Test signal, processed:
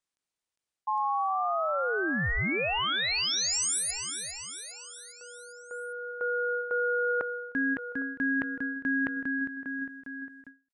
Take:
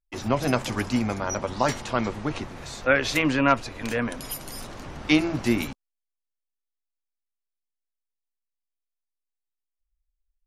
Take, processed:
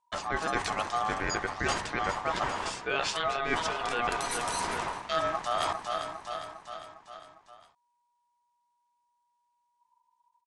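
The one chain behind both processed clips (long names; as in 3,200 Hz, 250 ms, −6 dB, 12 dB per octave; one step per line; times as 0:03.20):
dynamic equaliser 860 Hz, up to +4 dB, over −37 dBFS, Q 2.6
in parallel at +1 dB: brickwall limiter −16 dBFS
on the sum: repeating echo 404 ms, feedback 56%, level −15 dB
reversed playback
downward compressor 10 to 1, threshold −26 dBFS
reversed playback
ring modulation 960 Hz
downsampling to 22,050 Hz
every ending faded ahead of time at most 210 dB per second
level +2.5 dB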